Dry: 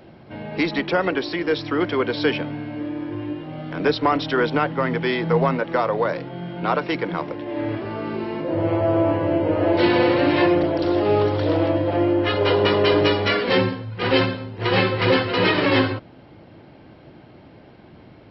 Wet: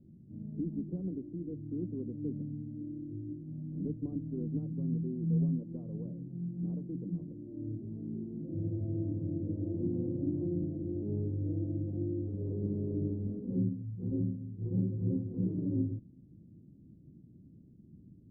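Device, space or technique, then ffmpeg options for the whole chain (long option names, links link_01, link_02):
the neighbour's flat through the wall: -af "lowpass=frequency=270:width=0.5412,lowpass=frequency=270:width=1.3066,equalizer=frequency=180:width_type=o:width=0.54:gain=4.5,volume=-8.5dB"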